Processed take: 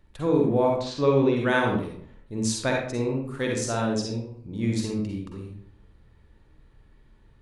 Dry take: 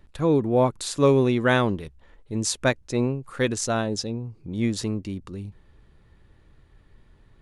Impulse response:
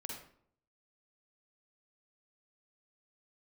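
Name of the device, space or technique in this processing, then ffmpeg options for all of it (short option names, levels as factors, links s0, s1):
bathroom: -filter_complex "[1:a]atrim=start_sample=2205[s0];[0:a][s0]afir=irnorm=-1:irlink=0,asplit=3[s1][s2][s3];[s1]afade=t=out:st=0.79:d=0.02[s4];[s2]lowpass=f=5300:w=0.5412,lowpass=f=5300:w=1.3066,afade=t=in:st=0.79:d=0.02,afade=t=out:st=1.35:d=0.02[s5];[s3]afade=t=in:st=1.35:d=0.02[s6];[s4][s5][s6]amix=inputs=3:normalize=0"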